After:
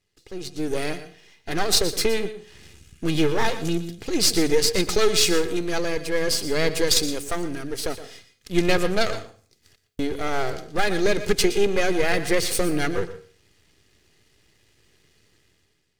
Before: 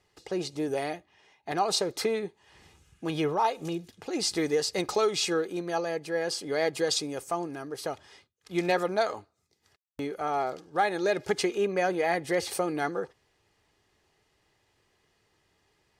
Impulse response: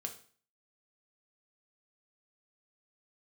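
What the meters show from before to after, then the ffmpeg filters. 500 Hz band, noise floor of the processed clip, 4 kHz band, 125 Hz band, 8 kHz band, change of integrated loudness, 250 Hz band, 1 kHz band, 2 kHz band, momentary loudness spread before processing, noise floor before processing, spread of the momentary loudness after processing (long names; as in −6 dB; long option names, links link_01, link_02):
+4.5 dB, −66 dBFS, +9.0 dB, +9.0 dB, +10.0 dB, +6.0 dB, +7.0 dB, −0.5 dB, +7.0 dB, 10 LU, −72 dBFS, 12 LU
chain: -filter_complex "[0:a]aeval=exprs='if(lt(val(0),0),0.251*val(0),val(0))':channel_layout=same,equalizer=frequency=870:width=0.99:gain=-12.5,dynaudnorm=framelen=140:gausssize=9:maxgain=14dB,asplit=2[link_01][link_02];[1:a]atrim=start_sample=2205,adelay=118[link_03];[link_02][link_03]afir=irnorm=-1:irlink=0,volume=-10.5dB[link_04];[link_01][link_04]amix=inputs=2:normalize=0"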